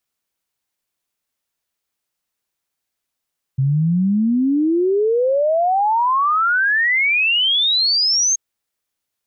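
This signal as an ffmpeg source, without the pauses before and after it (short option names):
-f lavfi -i "aevalsrc='0.211*clip(min(t,4.78-t)/0.01,0,1)*sin(2*PI*130*4.78/log(6500/130)*(exp(log(6500/130)*t/4.78)-1))':d=4.78:s=44100"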